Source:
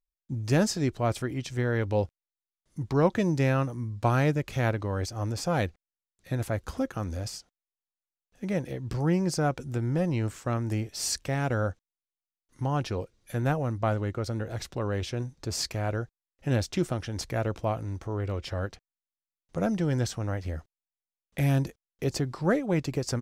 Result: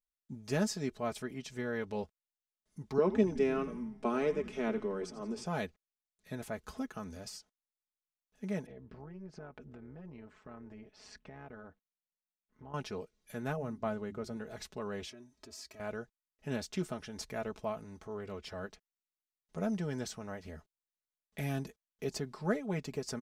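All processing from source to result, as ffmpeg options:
ffmpeg -i in.wav -filter_complex "[0:a]asettb=1/sr,asplit=3[link_01][link_02][link_03];[link_01]atrim=end=2.984[link_04];[link_02]atrim=start=2.98:end=5.46,asetpts=PTS-STARTPTS,afade=type=in:duration=0.004:curve=qsin,afade=type=out:start_time=2.476:duration=0.004:curve=qsin,highpass=frequency=210:width=0.5412,highpass=frequency=210:width=1.3066,equalizer=frequency=220:width_type=q:width=4:gain=9,equalizer=frequency=400:width_type=q:width=4:gain=10,equalizer=frequency=790:width_type=q:width=4:gain=-4,equalizer=frequency=1700:width_type=q:width=4:gain=-5,equalizer=frequency=4300:width_type=q:width=4:gain=-8,equalizer=frequency=6800:width_type=q:width=4:gain=-7,lowpass=frequency=8800:width=0.5412,lowpass=frequency=8800:width=1.3066,asplit=7[link_05][link_06][link_07][link_08][link_09][link_10][link_11];[link_06]adelay=86,afreqshift=-110,volume=-13dB[link_12];[link_07]adelay=172,afreqshift=-220,volume=-18.2dB[link_13];[link_08]adelay=258,afreqshift=-330,volume=-23.4dB[link_14];[link_09]adelay=344,afreqshift=-440,volume=-28.6dB[link_15];[link_10]adelay=430,afreqshift=-550,volume=-33.8dB[link_16];[link_11]adelay=516,afreqshift=-660,volume=-39dB[link_17];[link_05][link_12][link_13][link_14][link_15][link_16][link_17]amix=inputs=7:normalize=0,atrim=end_sample=109368[link_18];[link_03]atrim=start=5.456[link_19];[link_04][link_18]acrossfade=duration=0.004:curve1=hsin:curve2=qsin[link_20];[link_20][link_19]acrossfade=duration=0.004:curve1=qsin:curve2=hsin,asettb=1/sr,asplit=3[link_21][link_22][link_23];[link_21]atrim=end=8.664[link_24];[link_22]atrim=start=8.66:end=12.74,asetpts=PTS-STARTPTS,afade=type=in:duration=0.004:curve=qsin,afade=type=out:start_time=4.076:duration=0.004:curve=qsin,lowpass=2300,acompressor=threshold=-32dB:ratio=16:attack=3.2:release=140:knee=1:detection=peak,tremolo=f=200:d=0.621[link_25];[link_23]atrim=start=12.736[link_26];[link_24][link_25]acrossfade=duration=0.004:curve1=hsin:curve2=qsin[link_27];[link_27][link_26]acrossfade=duration=0.004:curve1=qsin:curve2=hsin,asettb=1/sr,asplit=3[link_28][link_29][link_30];[link_28]atrim=end=13.564[link_31];[link_29]atrim=start=13.56:end=14.37,asetpts=PTS-STARTPTS,afade=type=in:duration=0.004:curve=qsin,afade=type=out:start_time=0.806:duration=0.004:curve=qsin,tiltshelf=frequency=650:gain=3,bandreject=frequency=50:width_type=h:width=6,bandreject=frequency=100:width_type=h:width=6,bandreject=frequency=150:width_type=h:width=6,bandreject=frequency=200:width_type=h:width=6,bandreject=frequency=250:width_type=h:width=6,bandreject=frequency=300:width_type=h:width=6,bandreject=frequency=350:width_type=h:width=6[link_32];[link_30]atrim=start=14.366[link_33];[link_31][link_32]acrossfade=duration=0.004:curve1=hsin:curve2=qsin[link_34];[link_34][link_33]acrossfade=duration=0.004:curve1=qsin:curve2=hsin,asettb=1/sr,asplit=3[link_35][link_36][link_37];[link_35]atrim=end=15.094[link_38];[link_36]atrim=start=15.09:end=15.8,asetpts=PTS-STARTPTS,afade=type=in:duration=0.004:curve=qsin,afade=type=out:start_time=0.706:duration=0.004:curve=qsin,acompressor=threshold=-45dB:ratio=3:attack=3.2:release=140:knee=1:detection=peak,highpass=57,aecho=1:1:3.1:0.95,atrim=end_sample=31311[link_39];[link_37]atrim=start=15.796[link_40];[link_38][link_39]acrossfade=duration=0.004:curve1=hsin:curve2=qsin[link_41];[link_41][link_40]acrossfade=duration=0.004:curve1=qsin:curve2=hsin,lowshelf=frequency=110:gain=-6,aecho=1:1:4.7:0.7,volume=-9dB" out.wav

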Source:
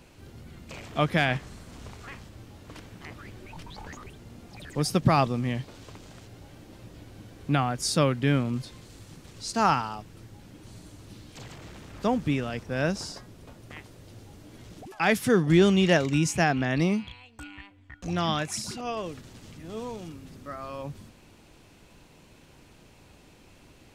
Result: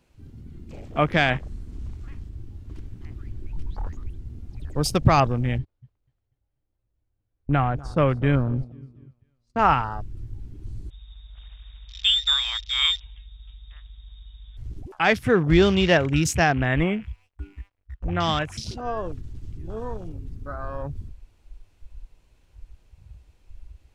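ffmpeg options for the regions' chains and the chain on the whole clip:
ffmpeg -i in.wav -filter_complex "[0:a]asettb=1/sr,asplit=3[link_01][link_02][link_03];[link_01]atrim=end=5.584[link_04];[link_02]atrim=start=5.58:end=9.59,asetpts=PTS-STARTPTS,afade=type=in:duration=0.004:curve=qsin,afade=type=out:start_time=4.006:duration=0.004:curve=qsin,lowpass=frequency=2000:poles=1,agate=range=-25dB:threshold=-40dB:ratio=16:release=100:detection=peak,aecho=1:1:244|488|732|976:0.112|0.0572|0.0292|0.0149,atrim=end_sample=176841[link_05];[link_03]atrim=start=9.586[link_06];[link_04][link_05]acrossfade=duration=0.004:curve1=hsin:curve2=qsin[link_07];[link_07][link_06]acrossfade=duration=0.004:curve1=qsin:curve2=hsin,asettb=1/sr,asplit=3[link_08][link_09][link_10];[link_08]atrim=end=10.904[link_11];[link_09]atrim=start=10.9:end=14.57,asetpts=PTS-STARTPTS,afade=type=in:duration=0.004:curve=qsin,afade=type=out:start_time=3.666:duration=0.004:curve=qsin,lowpass=frequency=3200:width_type=q:width=0.5098,lowpass=frequency=3200:width_type=q:width=0.6013,lowpass=frequency=3200:width_type=q:width=0.9,lowpass=frequency=3200:width_type=q:width=2.563,afreqshift=-3800,aeval=exprs='val(0)+0.00141*(sin(2*PI*50*n/s)+sin(2*PI*2*50*n/s)/2+sin(2*PI*3*50*n/s)/3+sin(2*PI*4*50*n/s)/4+sin(2*PI*5*50*n/s)/5)':channel_layout=same[link_12];[link_10]atrim=start=14.566[link_13];[link_11][link_12]acrossfade=duration=0.004:curve1=hsin:curve2=qsin[link_14];[link_14][link_13]acrossfade=duration=0.004:curve1=qsin:curve2=hsin,asettb=1/sr,asplit=3[link_15][link_16][link_17];[link_15]atrim=end=16.674[link_18];[link_16]atrim=start=16.67:end=18.2,asetpts=PTS-STARTPTS,afade=type=in:duration=0.004:curve=qsin,afade=type=out:start_time=1.526:duration=0.004:curve=qsin,highshelf=frequency=3400:width_type=q:width=1.5:gain=-12.5,aeval=exprs='sgn(val(0))*max(abs(val(0))-0.00211,0)':channel_layout=same[link_19];[link_17]atrim=start=18.196[link_20];[link_18][link_19]acrossfade=duration=0.004:curve1=hsin:curve2=qsin[link_21];[link_21][link_20]acrossfade=duration=0.004:curve1=qsin:curve2=hsin,afwtdn=0.0126,asubboost=boost=9.5:cutoff=61,volume=4.5dB" out.wav

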